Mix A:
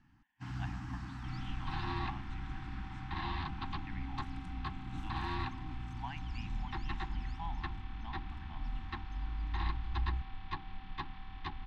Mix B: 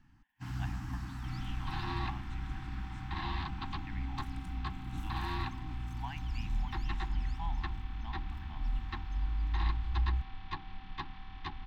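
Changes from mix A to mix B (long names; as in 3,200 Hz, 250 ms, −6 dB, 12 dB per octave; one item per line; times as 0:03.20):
first sound: add low-shelf EQ 71 Hz +8 dB
master: remove high-frequency loss of the air 68 metres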